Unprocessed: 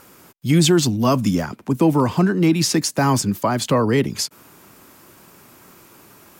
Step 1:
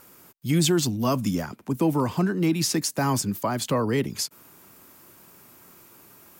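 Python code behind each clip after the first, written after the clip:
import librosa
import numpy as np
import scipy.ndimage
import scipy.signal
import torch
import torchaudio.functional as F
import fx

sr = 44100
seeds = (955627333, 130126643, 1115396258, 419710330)

y = fx.high_shelf(x, sr, hz=11000.0, db=9.0)
y = y * 10.0 ** (-6.5 / 20.0)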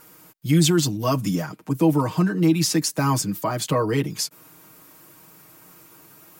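y = x + 0.79 * np.pad(x, (int(6.4 * sr / 1000.0), 0))[:len(x)]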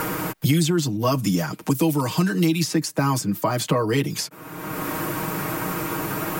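y = fx.band_squash(x, sr, depth_pct=100)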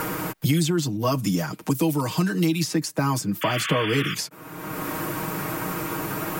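y = fx.spec_paint(x, sr, seeds[0], shape='noise', start_s=3.41, length_s=0.74, low_hz=1100.0, high_hz=3500.0, level_db=-28.0)
y = y * 10.0 ** (-2.0 / 20.0)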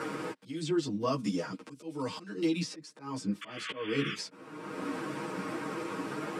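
y = fx.auto_swell(x, sr, attack_ms=289.0)
y = fx.cabinet(y, sr, low_hz=150.0, low_slope=12, high_hz=8000.0, hz=(260.0, 490.0, 710.0, 6700.0), db=(6, 7, -4, -7))
y = fx.ensemble(y, sr)
y = y * 10.0 ** (-5.0 / 20.0)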